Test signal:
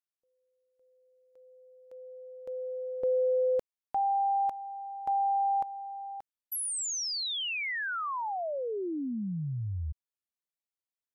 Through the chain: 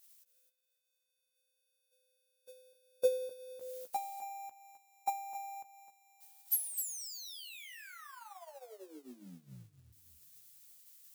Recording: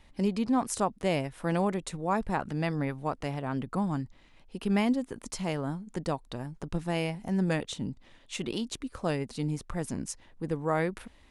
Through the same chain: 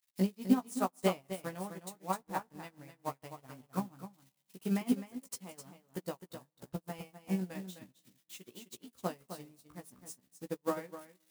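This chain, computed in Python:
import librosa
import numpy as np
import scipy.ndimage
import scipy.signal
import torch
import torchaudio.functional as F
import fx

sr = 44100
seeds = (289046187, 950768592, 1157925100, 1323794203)

y = x + 0.5 * 10.0 ** (-28.0 / 20.0) * np.diff(np.sign(x), prepend=np.sign(x[:1]))
y = fx.transient(y, sr, attack_db=9, sustain_db=-6)
y = scipy.signal.sosfilt(scipy.signal.butter(2, 91.0, 'highpass', fs=sr, output='sos'), y)
y = fx.doubler(y, sr, ms=16.0, db=-4.5)
y = y + 10.0 ** (-4.5 / 20.0) * np.pad(y, (int(258 * sr / 1000.0), 0))[:len(y)]
y = fx.rev_spring(y, sr, rt60_s=3.3, pass_ms=(35, 44), chirp_ms=75, drr_db=17.0)
y = fx.upward_expand(y, sr, threshold_db=-43.0, expansion=2.5)
y = y * librosa.db_to_amplitude(-5.0)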